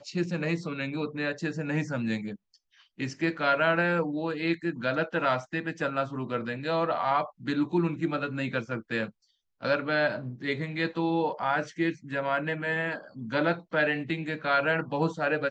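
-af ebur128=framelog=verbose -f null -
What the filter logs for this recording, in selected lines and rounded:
Integrated loudness:
  I:         -29.1 LUFS
  Threshold: -39.3 LUFS
Loudness range:
  LRA:         2.1 LU
  Threshold: -49.3 LUFS
  LRA low:   -30.2 LUFS
  LRA high:  -28.1 LUFS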